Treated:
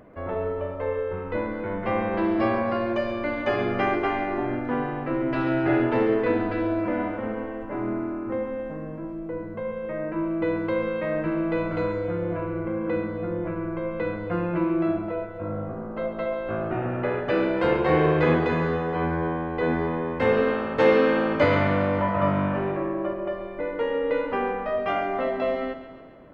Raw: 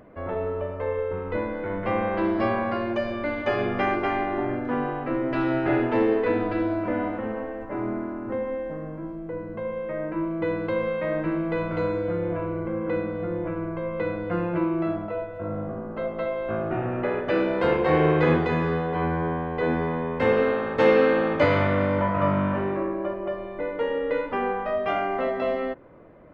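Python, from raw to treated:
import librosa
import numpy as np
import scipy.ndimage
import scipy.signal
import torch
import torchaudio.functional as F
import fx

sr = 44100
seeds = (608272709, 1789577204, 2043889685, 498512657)

y = fx.echo_feedback(x, sr, ms=137, feedback_pct=59, wet_db=-12.0)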